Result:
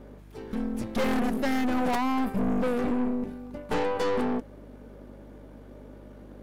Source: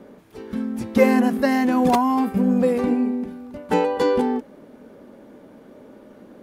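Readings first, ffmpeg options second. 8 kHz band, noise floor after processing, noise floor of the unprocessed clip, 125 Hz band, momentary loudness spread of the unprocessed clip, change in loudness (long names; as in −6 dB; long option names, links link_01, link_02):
can't be measured, −47 dBFS, −48 dBFS, −6.0 dB, 12 LU, −8.0 dB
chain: -af "aeval=exprs='val(0)+0.00631*(sin(2*PI*50*n/s)+sin(2*PI*2*50*n/s)/2+sin(2*PI*3*50*n/s)/3+sin(2*PI*4*50*n/s)/4+sin(2*PI*5*50*n/s)/5)':channel_layout=same,aeval=exprs='(tanh(15.8*val(0)+0.7)-tanh(0.7))/15.8':channel_layout=same"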